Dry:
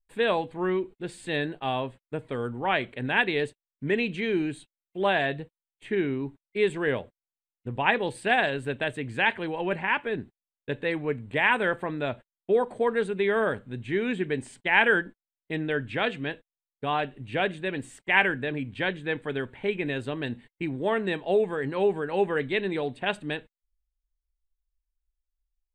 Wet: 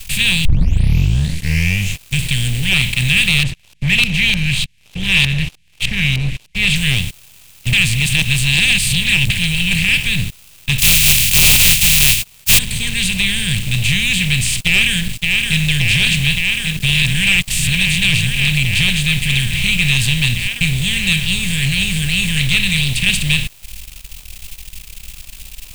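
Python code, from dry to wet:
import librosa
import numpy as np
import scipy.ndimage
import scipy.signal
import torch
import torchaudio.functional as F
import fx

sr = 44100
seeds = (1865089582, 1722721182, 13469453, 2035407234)

y = fx.filter_lfo_lowpass(x, sr, shape='saw_up', hz=3.3, low_hz=680.0, high_hz=4400.0, q=2.6, at=(3.43, 6.76))
y = fx.spec_flatten(y, sr, power=0.12, at=(10.78, 12.57), fade=0.02)
y = fx.echo_throw(y, sr, start_s=14.56, length_s=1.06, ms=570, feedback_pct=80, wet_db=-10.5)
y = fx.edit(y, sr, fx.tape_start(start_s=0.45, length_s=1.79),
    fx.reverse_span(start_s=7.73, length_s=1.57),
    fx.reverse_span(start_s=17.02, length_s=1.45), tone=tone)
y = fx.bin_compress(y, sr, power=0.4)
y = scipy.signal.sosfilt(scipy.signal.ellip(3, 1.0, 40, [160.0, 2700.0], 'bandstop', fs=sr, output='sos'), y)
y = fx.leveller(y, sr, passes=3)
y = y * librosa.db_to_amplitude(3.5)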